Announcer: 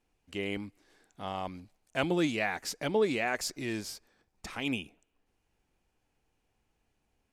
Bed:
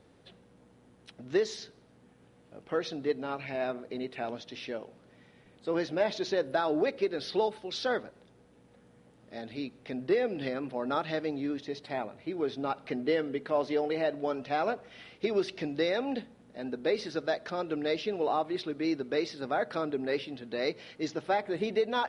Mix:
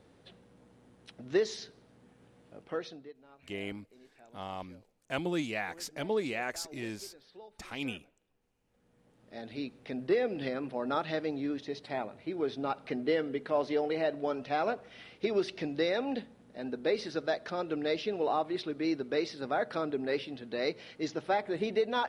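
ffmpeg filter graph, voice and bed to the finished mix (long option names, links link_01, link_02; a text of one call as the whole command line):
ffmpeg -i stem1.wav -i stem2.wav -filter_complex "[0:a]adelay=3150,volume=-4dB[link_01];[1:a]volume=21.5dB,afade=type=out:start_time=2.49:duration=0.63:silence=0.0749894,afade=type=in:start_time=8.62:duration=0.95:silence=0.0794328[link_02];[link_01][link_02]amix=inputs=2:normalize=0" out.wav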